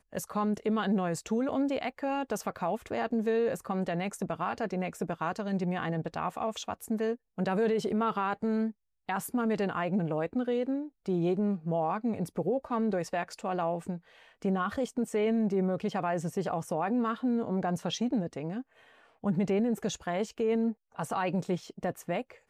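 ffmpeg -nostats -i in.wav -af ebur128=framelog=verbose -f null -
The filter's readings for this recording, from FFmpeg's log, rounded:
Integrated loudness:
  I:         -31.6 LUFS
  Threshold: -41.7 LUFS
Loudness range:
  LRA:         1.9 LU
  Threshold: -51.7 LUFS
  LRA low:   -32.5 LUFS
  LRA high:  -30.6 LUFS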